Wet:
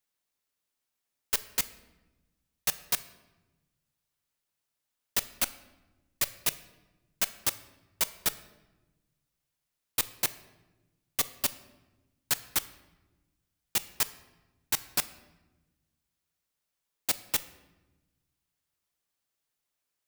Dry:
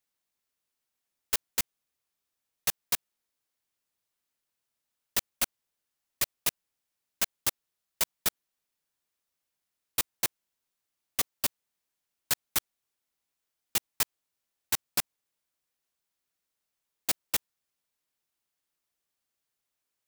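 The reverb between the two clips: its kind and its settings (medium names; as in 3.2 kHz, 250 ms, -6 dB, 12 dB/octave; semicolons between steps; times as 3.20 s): simulated room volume 620 m³, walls mixed, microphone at 0.33 m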